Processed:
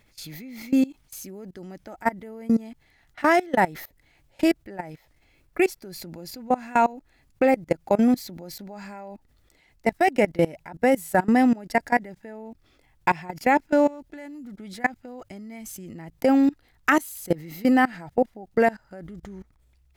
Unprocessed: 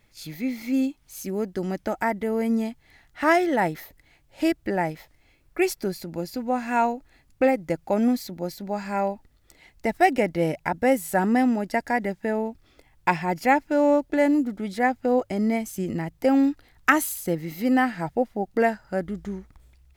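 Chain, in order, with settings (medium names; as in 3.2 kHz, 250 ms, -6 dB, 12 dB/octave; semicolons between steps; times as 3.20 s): 13.86–15.95 s: dynamic bell 500 Hz, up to -7 dB, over -32 dBFS, Q 0.72; level held to a coarse grid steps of 22 dB; trim +5 dB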